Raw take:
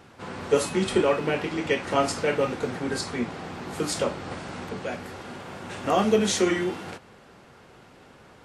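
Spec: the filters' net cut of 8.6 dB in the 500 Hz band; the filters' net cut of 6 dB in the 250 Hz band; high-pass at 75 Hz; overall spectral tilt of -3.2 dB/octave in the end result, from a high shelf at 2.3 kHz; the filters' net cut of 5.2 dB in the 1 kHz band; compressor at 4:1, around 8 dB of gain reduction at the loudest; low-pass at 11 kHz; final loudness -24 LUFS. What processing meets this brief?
high-pass 75 Hz; low-pass 11 kHz; peaking EQ 250 Hz -5 dB; peaking EQ 500 Hz -8.5 dB; peaking EQ 1 kHz -4.5 dB; treble shelf 2.3 kHz +3 dB; compression 4:1, threshold -32 dBFS; trim +12 dB

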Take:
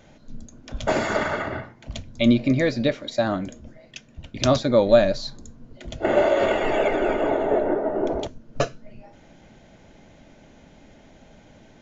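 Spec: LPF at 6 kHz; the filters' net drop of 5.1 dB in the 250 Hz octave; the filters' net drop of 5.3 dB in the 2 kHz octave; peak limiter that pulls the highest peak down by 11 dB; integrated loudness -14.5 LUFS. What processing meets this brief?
low-pass 6 kHz; peaking EQ 250 Hz -6 dB; peaking EQ 2 kHz -7 dB; trim +14 dB; peak limiter -3.5 dBFS

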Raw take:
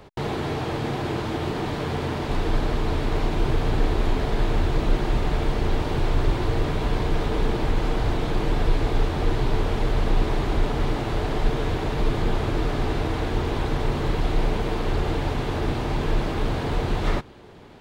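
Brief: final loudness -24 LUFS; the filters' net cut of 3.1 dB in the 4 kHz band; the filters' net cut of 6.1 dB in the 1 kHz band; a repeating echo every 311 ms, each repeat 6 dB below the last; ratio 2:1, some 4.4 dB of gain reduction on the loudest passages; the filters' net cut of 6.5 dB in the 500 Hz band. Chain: peaking EQ 500 Hz -7.5 dB; peaking EQ 1 kHz -5 dB; peaking EQ 4 kHz -3.5 dB; compression 2:1, threshold -23 dBFS; feedback delay 311 ms, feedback 50%, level -6 dB; trim +5 dB

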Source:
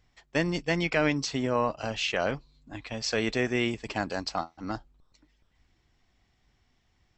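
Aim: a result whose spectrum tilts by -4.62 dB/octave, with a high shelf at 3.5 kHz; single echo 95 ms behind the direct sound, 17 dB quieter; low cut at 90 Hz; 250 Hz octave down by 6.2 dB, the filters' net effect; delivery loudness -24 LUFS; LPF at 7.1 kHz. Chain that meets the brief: high-pass 90 Hz; low-pass 7.1 kHz; peaking EQ 250 Hz -8.5 dB; treble shelf 3.5 kHz -5.5 dB; delay 95 ms -17 dB; trim +8 dB

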